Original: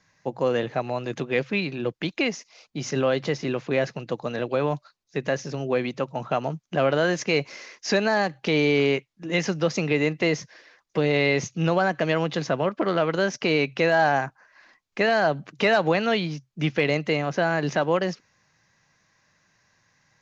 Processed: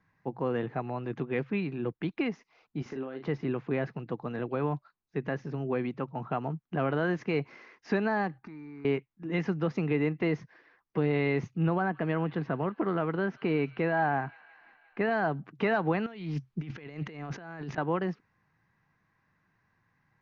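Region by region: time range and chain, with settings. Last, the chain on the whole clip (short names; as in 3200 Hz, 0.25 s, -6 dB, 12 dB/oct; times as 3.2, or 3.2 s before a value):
2.82–3.28 resonant low shelf 220 Hz -7 dB, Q 1.5 + compressor 10:1, threshold -29 dBFS + doubler 38 ms -6.5 dB
8.38–8.85 fixed phaser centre 1300 Hz, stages 4 + comb 3.3 ms, depth 35% + compressor 8:1, threshold -38 dBFS
11.54–15.11 air absorption 130 m + thin delay 0.174 s, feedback 73%, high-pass 2000 Hz, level -17 dB
16.06–17.78 high shelf 3400 Hz +11 dB + negative-ratio compressor -34 dBFS + Doppler distortion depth 0.17 ms
whole clip: Bessel low-pass 1300 Hz, order 2; bell 570 Hz -10.5 dB 0.45 oct; gain -2.5 dB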